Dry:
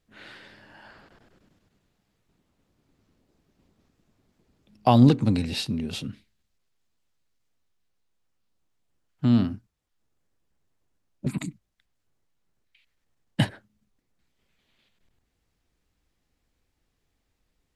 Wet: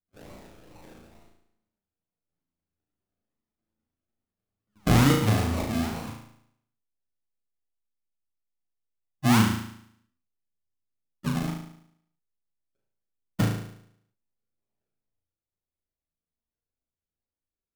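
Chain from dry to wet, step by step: gate with hold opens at -46 dBFS; chorus voices 2, 0.21 Hz, delay 11 ms, depth 2.2 ms; decimation with a swept rate 37×, swing 60% 2.3 Hz; on a send: flutter echo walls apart 6.2 m, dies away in 0.69 s

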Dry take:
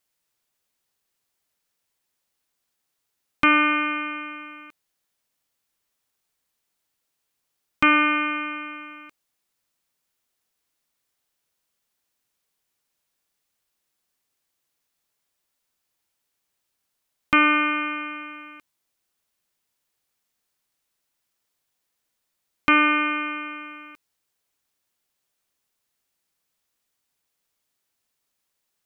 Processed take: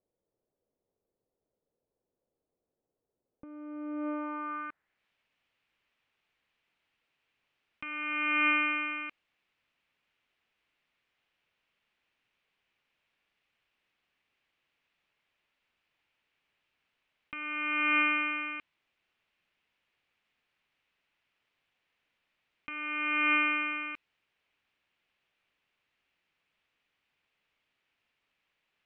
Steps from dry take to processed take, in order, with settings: compressor with a negative ratio -30 dBFS, ratio -1; low-pass sweep 490 Hz -> 2.6 kHz, 3.96–5.05 s; trim -5.5 dB

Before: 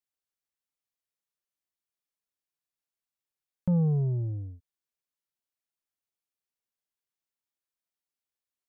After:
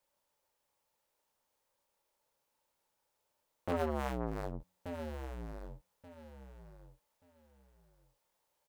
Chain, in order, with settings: cycle switcher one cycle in 2, inverted; bass shelf 120 Hz +6 dB; de-hum 90.17 Hz, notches 3; compression, threshold -32 dBFS, peak gain reduction 13 dB; peak limiter -33 dBFS, peak gain reduction 11.5 dB; gain riding 0.5 s; small resonant body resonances 560/870 Hz, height 15 dB, ringing for 20 ms; overload inside the chain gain 33.5 dB; doubling 30 ms -9 dB; on a send: feedback delay 1181 ms, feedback 21%, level -11.5 dB; on the sum: transformer saturation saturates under 510 Hz; trim +8.5 dB

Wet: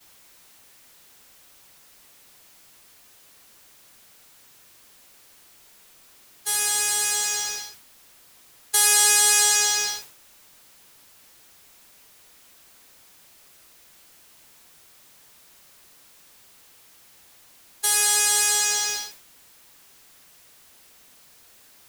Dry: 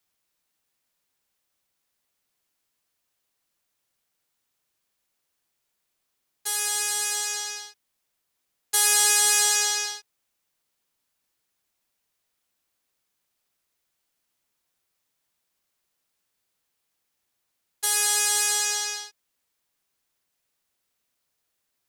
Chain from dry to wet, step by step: jump at every zero crossing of -29.5 dBFS; expander -26 dBFS; trim +1.5 dB

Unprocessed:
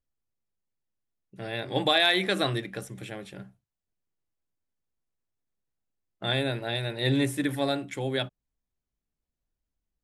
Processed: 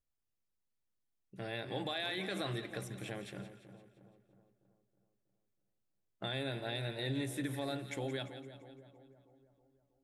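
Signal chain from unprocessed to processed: peak limiter -19 dBFS, peak gain reduction 8 dB; compression 2:1, threshold -36 dBFS, peak gain reduction 7.5 dB; two-band feedback delay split 1.1 kHz, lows 321 ms, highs 171 ms, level -11.5 dB; trim -3.5 dB

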